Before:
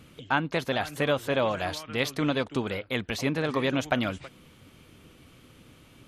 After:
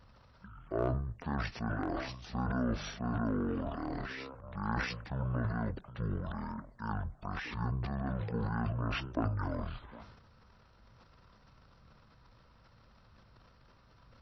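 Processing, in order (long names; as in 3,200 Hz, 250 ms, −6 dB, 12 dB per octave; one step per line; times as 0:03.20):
wrong playback speed 78 rpm record played at 33 rpm
transient designer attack −1 dB, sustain +11 dB
level −9 dB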